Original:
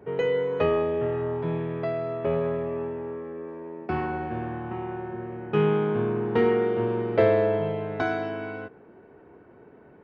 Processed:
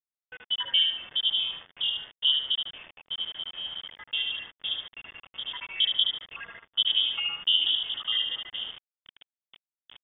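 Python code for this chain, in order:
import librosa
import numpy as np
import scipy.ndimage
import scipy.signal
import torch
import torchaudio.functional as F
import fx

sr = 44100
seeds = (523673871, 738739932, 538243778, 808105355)

y = fx.spec_dropout(x, sr, seeds[0], share_pct=79)
y = np.repeat(scipy.signal.resample_poly(y, 1, 6), 6)[:len(y)]
y = scipy.signal.sosfilt(scipy.signal.butter(2, 64.0, 'highpass', fs=sr, output='sos'), y)
y = fx.peak_eq(y, sr, hz=1900.0, db=-6.5, octaves=2.8)
y = fx.echo_tape(y, sr, ms=74, feedback_pct=40, wet_db=-3, lp_hz=1900.0, drive_db=11.0, wow_cents=24)
y = fx.quant_dither(y, sr, seeds[1], bits=8, dither='none')
y = fx.freq_invert(y, sr, carrier_hz=3500)
y = fx.notch(y, sr, hz=2400.0, q=6.4)
y = y * librosa.db_to_amplitude(5.0)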